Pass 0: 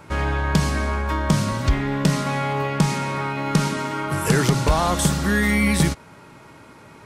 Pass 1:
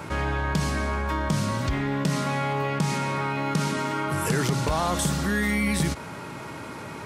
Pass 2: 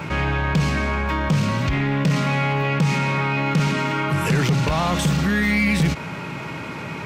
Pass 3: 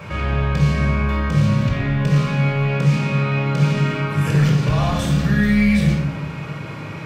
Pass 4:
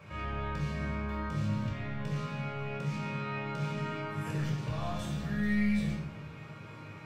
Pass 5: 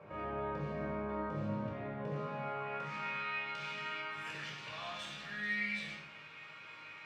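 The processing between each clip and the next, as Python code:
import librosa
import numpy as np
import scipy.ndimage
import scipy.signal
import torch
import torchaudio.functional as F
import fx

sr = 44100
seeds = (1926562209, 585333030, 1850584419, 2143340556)

y1 = scipy.signal.sosfilt(scipy.signal.butter(2, 64.0, 'highpass', fs=sr, output='sos'), x)
y1 = fx.env_flatten(y1, sr, amount_pct=50)
y1 = y1 * 10.0 ** (-7.5 / 20.0)
y2 = fx.graphic_eq_15(y1, sr, hz=(160, 2500, 10000), db=(7, 8, -10))
y2 = 10.0 ** (-16.5 / 20.0) * np.tanh(y2 / 10.0 ** (-16.5 / 20.0))
y2 = y2 * 10.0 ** (4.0 / 20.0)
y3 = fx.room_shoebox(y2, sr, seeds[0], volume_m3=2500.0, walls='furnished', distance_m=5.8)
y3 = y3 * 10.0 ** (-7.5 / 20.0)
y4 = fx.resonator_bank(y3, sr, root=39, chord='sus4', decay_s=0.23)
y4 = y4 * 10.0 ** (-6.0 / 20.0)
y5 = scipy.ndimage.median_filter(y4, 3, mode='constant')
y5 = fx.filter_sweep_bandpass(y5, sr, from_hz=550.0, to_hz=2700.0, start_s=2.19, end_s=3.38, q=1.1)
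y5 = y5 * 10.0 ** (4.5 / 20.0)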